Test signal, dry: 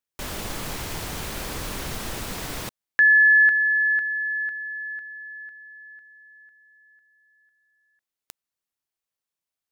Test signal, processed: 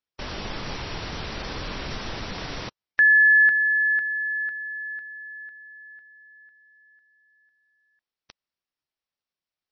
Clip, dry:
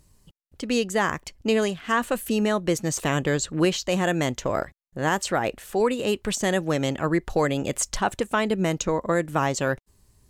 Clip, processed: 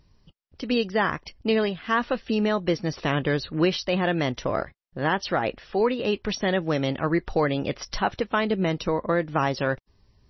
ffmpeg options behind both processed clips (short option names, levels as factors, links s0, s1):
-ar 22050 -c:a libmp3lame -b:a 24k